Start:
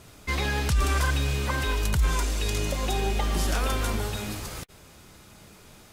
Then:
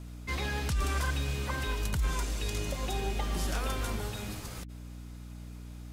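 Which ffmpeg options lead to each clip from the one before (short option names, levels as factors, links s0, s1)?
-af "aeval=exprs='val(0)+0.0158*(sin(2*PI*60*n/s)+sin(2*PI*2*60*n/s)/2+sin(2*PI*3*60*n/s)/3+sin(2*PI*4*60*n/s)/4+sin(2*PI*5*60*n/s)/5)':c=same,volume=0.473"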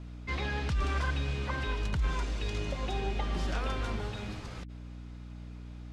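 -af "lowpass=4100"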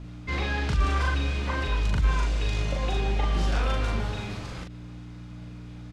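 -filter_complex "[0:a]asplit=2[s0][s1];[s1]adelay=40,volume=0.794[s2];[s0][s2]amix=inputs=2:normalize=0,volume=1.5"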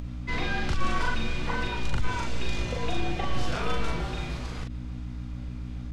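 -af "afreqshift=-53,aeval=exprs='val(0)+0.0178*(sin(2*PI*60*n/s)+sin(2*PI*2*60*n/s)/2+sin(2*PI*3*60*n/s)/3+sin(2*PI*4*60*n/s)/4+sin(2*PI*5*60*n/s)/5)':c=same,acompressor=mode=upward:threshold=0.0112:ratio=2.5"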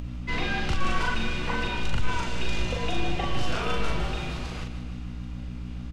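-filter_complex "[0:a]equalizer=f=2800:w=7:g=6,asplit=2[s0][s1];[s1]asoftclip=type=hard:threshold=0.106,volume=0.335[s2];[s0][s2]amix=inputs=2:normalize=0,aecho=1:1:155|310|465|620|775|930|1085:0.282|0.166|0.0981|0.0579|0.0342|0.0201|0.0119,volume=0.841"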